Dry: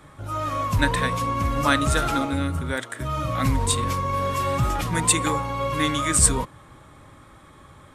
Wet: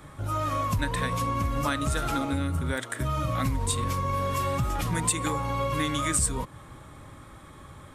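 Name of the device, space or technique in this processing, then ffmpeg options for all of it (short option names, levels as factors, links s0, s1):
ASMR close-microphone chain: -af "lowshelf=f=220:g=3.5,acompressor=threshold=0.0631:ratio=6,highshelf=f=9600:g=5.5"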